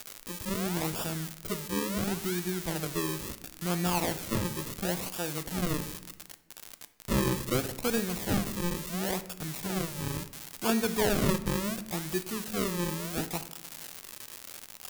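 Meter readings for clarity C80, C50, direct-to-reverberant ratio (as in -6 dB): 16.5 dB, 14.0 dB, 10.5 dB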